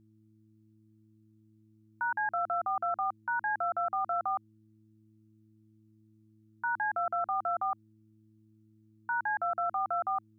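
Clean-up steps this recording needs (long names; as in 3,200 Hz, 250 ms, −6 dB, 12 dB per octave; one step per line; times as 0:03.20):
hum removal 108.4 Hz, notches 3
downward expander −55 dBFS, range −21 dB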